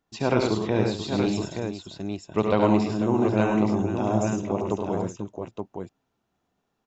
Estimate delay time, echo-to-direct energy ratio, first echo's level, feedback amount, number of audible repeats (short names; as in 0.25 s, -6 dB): 71 ms, 0.0 dB, -6.5 dB, no steady repeat, 5